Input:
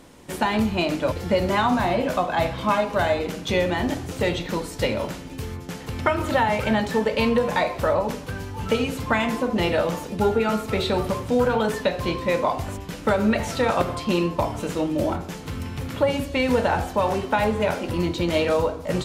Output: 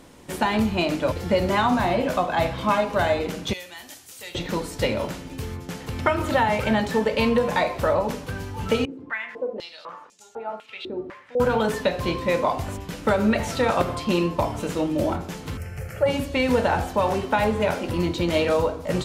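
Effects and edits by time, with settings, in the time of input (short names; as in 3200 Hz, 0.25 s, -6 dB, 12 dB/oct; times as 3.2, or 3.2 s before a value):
3.53–4.35 pre-emphasis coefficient 0.97
8.85–11.4 stepped band-pass 4 Hz 320–6900 Hz
15.57–16.06 fixed phaser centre 1000 Hz, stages 6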